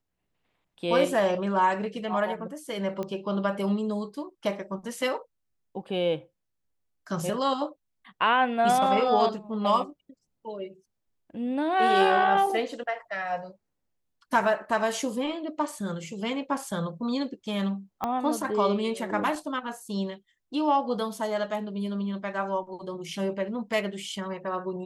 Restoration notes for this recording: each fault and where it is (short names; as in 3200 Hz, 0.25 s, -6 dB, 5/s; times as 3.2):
3.03 pop -21 dBFS
18.04 pop -16 dBFS